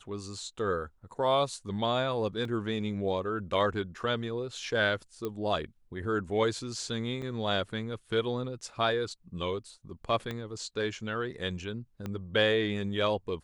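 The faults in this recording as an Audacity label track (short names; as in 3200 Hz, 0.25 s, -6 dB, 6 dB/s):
2.450000	2.450000	gap 2.4 ms
5.250000	5.250000	pop -21 dBFS
7.220000	7.220000	gap 2.9 ms
10.310000	10.310000	pop -22 dBFS
12.060000	12.060000	pop -23 dBFS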